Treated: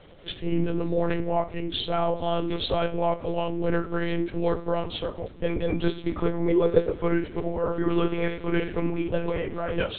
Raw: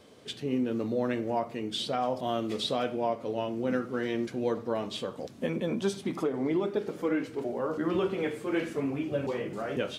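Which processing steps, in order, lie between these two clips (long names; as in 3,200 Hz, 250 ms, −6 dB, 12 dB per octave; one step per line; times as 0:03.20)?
one-pitch LPC vocoder at 8 kHz 170 Hz
0:06.48–0:06.94: parametric band 490 Hz +11 dB 0.3 octaves
level +5 dB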